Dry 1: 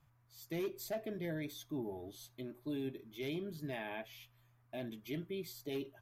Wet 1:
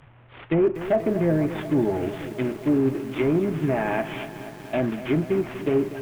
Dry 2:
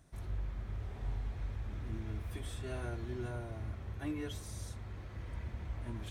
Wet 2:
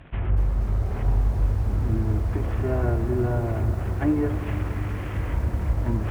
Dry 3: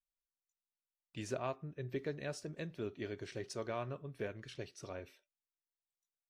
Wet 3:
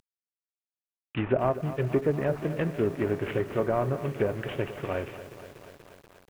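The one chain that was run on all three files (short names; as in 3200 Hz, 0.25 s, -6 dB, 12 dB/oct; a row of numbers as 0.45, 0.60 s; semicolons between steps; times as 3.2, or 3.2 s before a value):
CVSD 16 kbps; treble ducked by the level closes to 1000 Hz, closed at -37 dBFS; lo-fi delay 0.241 s, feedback 80%, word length 10-bit, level -13 dB; normalise peaks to -12 dBFS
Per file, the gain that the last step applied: +19.0, +17.0, +15.0 dB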